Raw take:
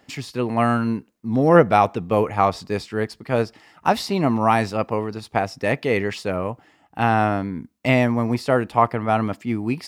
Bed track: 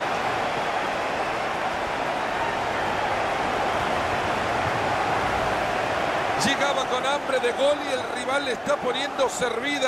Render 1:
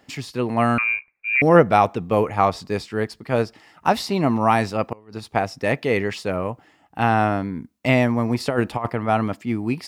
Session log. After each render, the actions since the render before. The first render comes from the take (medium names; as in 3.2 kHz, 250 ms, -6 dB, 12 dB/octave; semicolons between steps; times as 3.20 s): 0.78–1.42 s: frequency inversion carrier 2.6 kHz; 4.92–5.33 s: inverted gate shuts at -16 dBFS, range -25 dB; 8.40–8.90 s: compressor with a negative ratio -20 dBFS, ratio -0.5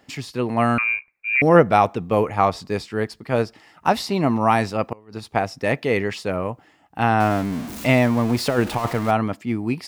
7.20–9.11 s: jump at every zero crossing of -27.5 dBFS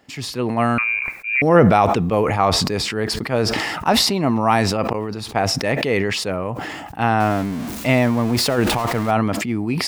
decay stretcher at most 27 dB/s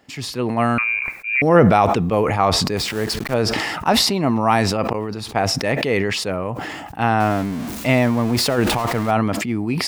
2.77–3.34 s: send-on-delta sampling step -28.5 dBFS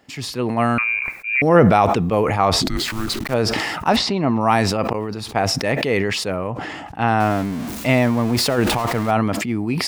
2.62–3.24 s: frequency shift -440 Hz; 3.96–4.41 s: distance through air 110 m; 6.47–7.08 s: distance through air 52 m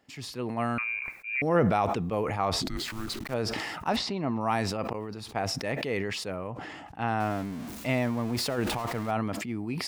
trim -11 dB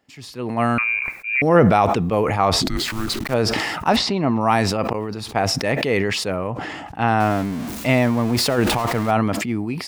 level rider gain up to 11 dB